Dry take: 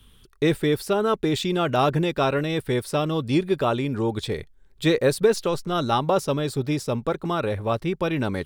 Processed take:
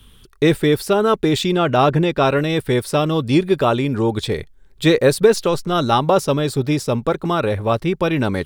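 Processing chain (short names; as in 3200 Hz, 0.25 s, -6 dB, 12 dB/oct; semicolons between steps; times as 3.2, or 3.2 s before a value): 1.52–2.25 high shelf 6000 Hz -8.5 dB; gain +6 dB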